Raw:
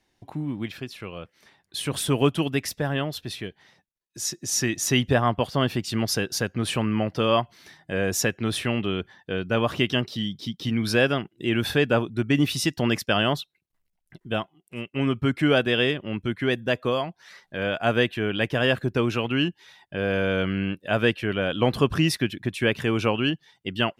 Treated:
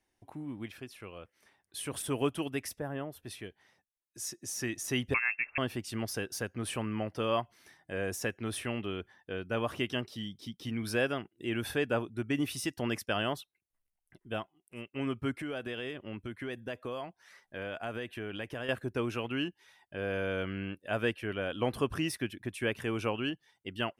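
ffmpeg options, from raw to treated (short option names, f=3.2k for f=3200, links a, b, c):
-filter_complex "[0:a]asplit=3[a][b][c];[a]afade=t=out:st=2.78:d=0.02[d];[b]equalizer=f=4.6k:w=0.52:g=-13,afade=t=in:st=2.78:d=0.02,afade=t=out:st=3.24:d=0.02[e];[c]afade=t=in:st=3.24:d=0.02[f];[d][e][f]amix=inputs=3:normalize=0,asettb=1/sr,asplit=3[g][h][i];[g]atrim=end=5.144[j];[h]atrim=start=5.14:end=5.58,asetpts=PTS-STARTPTS,afade=t=in:d=0.004:c=qsin,afade=t=out:st=0.436:d=0.004:c=qsin,lowpass=f=2.4k:t=q:w=0.5098,lowpass=f=2.4k:t=q:w=0.6013,lowpass=f=2.4k:t=q:w=0.9,lowpass=f=2.4k:t=q:w=2.563,afreqshift=-2800[k];[i]atrim=start=5.576[l];[j][k]acrossfade=d=0.004:c1=hsin:c2=qsin[m];[m][l]acrossfade=d=0.004:c1=qsin:c2=hsin,asettb=1/sr,asplit=3[n][o][p];[n]atrim=end=15.374[q];[o]atrim=start=15.37:end=18.69,asetpts=PTS-STARTPTS,afade=t=in:d=0.004:c=qsin,afade=t=out:st=3.316:d=0.004:c=qsin,acompressor=threshold=-24dB:ratio=6:attack=3.2:release=140:knee=1:detection=peak[r];[p]atrim=start=18.686[s];[q][r]acrossfade=d=0.004:c1=hsin:c2=qsin[t];[t][s]acrossfade=d=0.004:c1=qsin:c2=hsin,bandreject=f=7.1k:w=20,deesser=0.5,equalizer=f=160:t=o:w=0.67:g=-7,equalizer=f=4k:t=o:w=0.67:g=-6,equalizer=f=10k:t=o:w=0.67:g=6,volume=-8.5dB"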